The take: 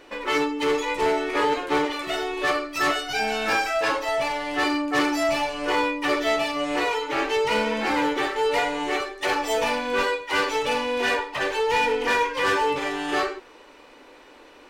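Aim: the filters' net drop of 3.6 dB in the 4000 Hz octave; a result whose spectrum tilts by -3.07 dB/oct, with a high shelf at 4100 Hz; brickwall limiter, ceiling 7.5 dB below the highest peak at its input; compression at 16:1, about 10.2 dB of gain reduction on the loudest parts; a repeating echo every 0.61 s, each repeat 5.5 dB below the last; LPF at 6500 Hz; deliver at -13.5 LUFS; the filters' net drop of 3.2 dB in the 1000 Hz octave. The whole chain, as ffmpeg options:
-af "lowpass=6.5k,equalizer=f=1k:t=o:g=-4,equalizer=f=4k:t=o:g=-8.5,highshelf=f=4.1k:g=7,acompressor=threshold=-30dB:ratio=16,alimiter=level_in=5.5dB:limit=-24dB:level=0:latency=1,volume=-5.5dB,aecho=1:1:610|1220|1830|2440|3050|3660|4270:0.531|0.281|0.149|0.079|0.0419|0.0222|0.0118,volume=22dB"

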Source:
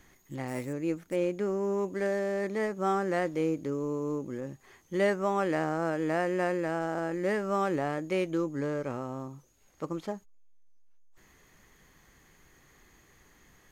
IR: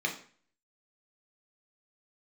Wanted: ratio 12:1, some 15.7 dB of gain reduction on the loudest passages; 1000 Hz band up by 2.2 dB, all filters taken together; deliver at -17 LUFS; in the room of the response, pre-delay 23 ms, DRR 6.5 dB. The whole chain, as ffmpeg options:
-filter_complex "[0:a]equalizer=f=1k:t=o:g=3,acompressor=threshold=-38dB:ratio=12,asplit=2[a][b];[1:a]atrim=start_sample=2205,adelay=23[c];[b][c]afir=irnorm=-1:irlink=0,volume=-14dB[d];[a][d]amix=inputs=2:normalize=0,volume=25.5dB"

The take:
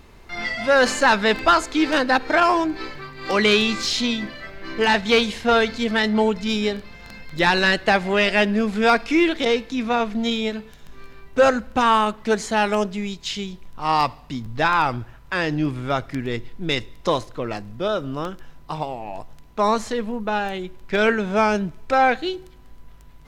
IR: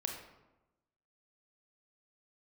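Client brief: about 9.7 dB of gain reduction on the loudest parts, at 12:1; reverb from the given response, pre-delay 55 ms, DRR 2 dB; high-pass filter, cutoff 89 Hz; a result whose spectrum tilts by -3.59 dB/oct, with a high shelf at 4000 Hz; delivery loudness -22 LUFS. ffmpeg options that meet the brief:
-filter_complex "[0:a]highpass=89,highshelf=f=4k:g=8,acompressor=threshold=-20dB:ratio=12,asplit=2[a][b];[1:a]atrim=start_sample=2205,adelay=55[c];[b][c]afir=irnorm=-1:irlink=0,volume=-3dB[d];[a][d]amix=inputs=2:normalize=0,volume=2dB"

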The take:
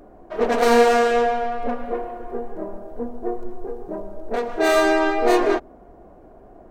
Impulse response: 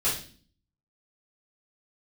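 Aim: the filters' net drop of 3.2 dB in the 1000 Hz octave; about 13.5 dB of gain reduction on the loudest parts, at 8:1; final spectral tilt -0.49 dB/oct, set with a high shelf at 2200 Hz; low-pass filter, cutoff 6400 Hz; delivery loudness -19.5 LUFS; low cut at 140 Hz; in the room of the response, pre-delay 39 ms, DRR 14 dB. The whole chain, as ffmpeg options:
-filter_complex "[0:a]highpass=140,lowpass=6.4k,equalizer=f=1k:t=o:g=-3.5,highshelf=f=2.2k:g=-8.5,acompressor=threshold=-26dB:ratio=8,asplit=2[a][b];[1:a]atrim=start_sample=2205,adelay=39[c];[b][c]afir=irnorm=-1:irlink=0,volume=-24dB[d];[a][d]amix=inputs=2:normalize=0,volume=12dB"

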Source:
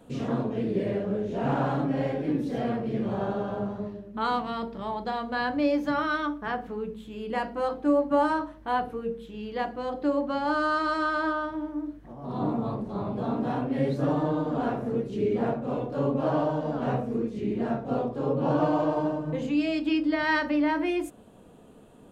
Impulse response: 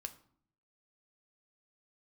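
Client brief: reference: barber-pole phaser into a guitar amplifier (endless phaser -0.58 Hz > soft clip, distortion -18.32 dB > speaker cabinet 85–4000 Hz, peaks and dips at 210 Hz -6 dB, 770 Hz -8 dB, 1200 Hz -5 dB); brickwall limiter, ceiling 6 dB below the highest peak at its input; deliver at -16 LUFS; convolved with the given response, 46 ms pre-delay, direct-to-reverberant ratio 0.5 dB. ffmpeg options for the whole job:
-filter_complex "[0:a]alimiter=limit=-18.5dB:level=0:latency=1,asplit=2[a][b];[1:a]atrim=start_sample=2205,adelay=46[c];[b][c]afir=irnorm=-1:irlink=0,volume=3dB[d];[a][d]amix=inputs=2:normalize=0,asplit=2[e][f];[f]afreqshift=-0.58[g];[e][g]amix=inputs=2:normalize=1,asoftclip=threshold=-21.5dB,highpass=85,equalizer=f=210:t=q:w=4:g=-6,equalizer=f=770:t=q:w=4:g=-8,equalizer=f=1.2k:t=q:w=4:g=-5,lowpass=f=4k:w=0.5412,lowpass=f=4k:w=1.3066,volume=17dB"

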